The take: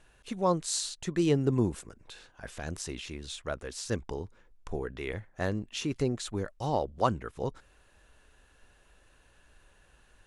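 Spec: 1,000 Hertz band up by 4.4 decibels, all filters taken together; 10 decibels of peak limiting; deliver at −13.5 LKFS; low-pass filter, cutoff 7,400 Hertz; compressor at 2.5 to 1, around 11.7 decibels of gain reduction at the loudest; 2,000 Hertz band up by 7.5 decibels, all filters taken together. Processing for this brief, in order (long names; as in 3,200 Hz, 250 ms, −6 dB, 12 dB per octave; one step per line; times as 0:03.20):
low-pass filter 7,400 Hz
parametric band 1,000 Hz +3.5 dB
parametric band 2,000 Hz +8.5 dB
downward compressor 2.5 to 1, threshold −35 dBFS
level +27.5 dB
brickwall limiter −1.5 dBFS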